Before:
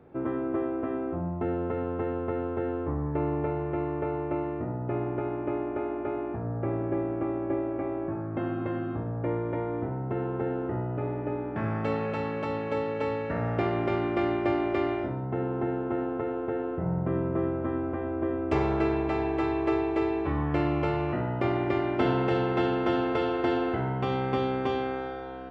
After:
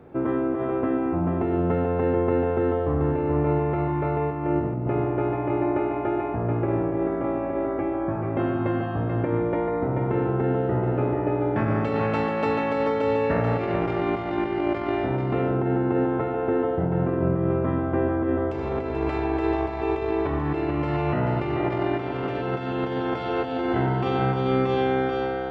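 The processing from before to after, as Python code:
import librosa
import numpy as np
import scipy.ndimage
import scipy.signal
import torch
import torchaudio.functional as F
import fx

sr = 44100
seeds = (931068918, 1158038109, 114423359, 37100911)

p1 = fx.low_shelf(x, sr, hz=390.0, db=8.5, at=(4.31, 4.87))
p2 = fx.over_compress(p1, sr, threshold_db=-29.0, ratio=-0.5)
p3 = p2 + fx.echo_single(p2, sr, ms=436, db=-5.0, dry=0)
y = F.gain(torch.from_numpy(p3), 5.0).numpy()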